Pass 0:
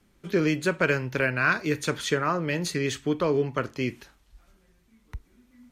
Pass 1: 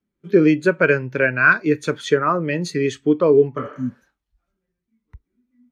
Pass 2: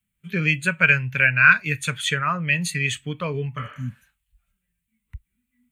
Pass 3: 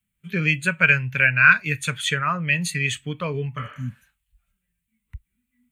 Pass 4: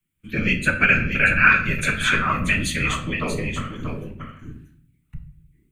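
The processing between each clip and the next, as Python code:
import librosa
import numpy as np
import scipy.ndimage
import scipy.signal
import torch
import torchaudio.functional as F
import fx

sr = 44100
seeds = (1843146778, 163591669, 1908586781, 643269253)

y1 = fx.spec_repair(x, sr, seeds[0], start_s=3.6, length_s=0.43, low_hz=260.0, high_hz=5800.0, source='both')
y1 = fx.low_shelf(y1, sr, hz=79.0, db=-11.5)
y1 = fx.spectral_expand(y1, sr, expansion=1.5)
y1 = y1 * librosa.db_to_amplitude(7.5)
y2 = fx.curve_eq(y1, sr, hz=(110.0, 200.0, 330.0, 660.0, 1300.0, 2700.0, 5400.0, 8100.0), db=(0, -8, -27, -15, -8, 6, -9, 8))
y2 = y2 * librosa.db_to_amplitude(5.0)
y3 = y2
y4 = fx.whisperise(y3, sr, seeds[1])
y4 = y4 + 10.0 ** (-7.5 / 20.0) * np.pad(y4, (int(634 * sr / 1000.0), 0))[:len(y4)]
y4 = fx.room_shoebox(y4, sr, seeds[2], volume_m3=76.0, walls='mixed', distance_m=0.47)
y4 = y4 * librosa.db_to_amplitude(-1.0)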